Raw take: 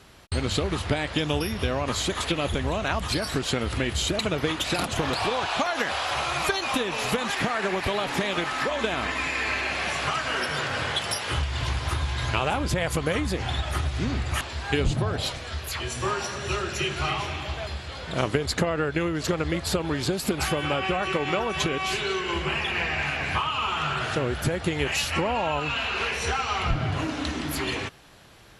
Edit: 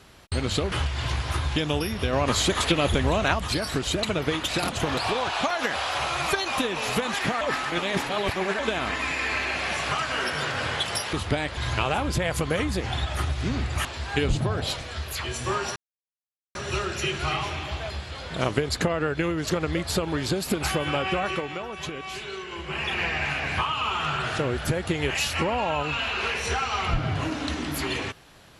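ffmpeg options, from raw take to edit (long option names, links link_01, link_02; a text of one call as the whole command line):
ffmpeg -i in.wav -filter_complex "[0:a]asplit=13[link_01][link_02][link_03][link_04][link_05][link_06][link_07][link_08][link_09][link_10][link_11][link_12][link_13];[link_01]atrim=end=0.722[link_14];[link_02]atrim=start=11.288:end=12.132[link_15];[link_03]atrim=start=1.158:end=1.732[link_16];[link_04]atrim=start=1.728:end=2.942,asetpts=PTS-STARTPTS,volume=4dB[link_17];[link_05]atrim=start=2.938:end=3.472[link_18];[link_06]atrim=start=4.028:end=7.572[link_19];[link_07]atrim=start=7.568:end=8.752,asetpts=PTS-STARTPTS,areverse[link_20];[link_08]atrim=start=8.748:end=11.292[link_21];[link_09]atrim=start=0.718:end=1.162[link_22];[link_10]atrim=start=12.128:end=16.32,asetpts=PTS-STARTPTS,afade=type=out:start_time=4.188:duration=0.004:curve=hsin,apad=pad_dur=0.79[link_23];[link_11]atrim=start=16.32:end=21.29,asetpts=PTS-STARTPTS,afade=type=in:duration=0.004:curve=hsin,afade=type=out:start_time=4.71:duration=0.26:silence=0.398107[link_24];[link_12]atrim=start=21.29:end=22.41,asetpts=PTS-STARTPTS,volume=-8dB[link_25];[link_13]atrim=start=22.41,asetpts=PTS-STARTPTS,afade=type=in:duration=0.26:silence=0.398107[link_26];[link_14][link_15]acrossfade=duration=0.004:curve1=hsin:curve2=hsin[link_27];[link_27][link_16]acrossfade=duration=0.004:curve1=hsin:curve2=hsin[link_28];[link_28][link_17]acrossfade=duration=0.004:curve1=hsin:curve2=hsin[link_29];[link_29][link_18]acrossfade=duration=0.004:curve1=hsin:curve2=hsin[link_30];[link_30][link_19]acrossfade=duration=0.004:curve1=hsin:curve2=hsin[link_31];[link_31][link_20]acrossfade=duration=0.004:curve1=hsin:curve2=hsin[link_32];[link_32][link_21]acrossfade=duration=0.004:curve1=hsin:curve2=hsin[link_33];[link_33][link_22]acrossfade=duration=0.004:curve1=hsin:curve2=hsin[link_34];[link_23][link_24][link_25][link_26]concat=n=4:v=0:a=1[link_35];[link_34][link_35]acrossfade=duration=0.004:curve1=hsin:curve2=hsin" out.wav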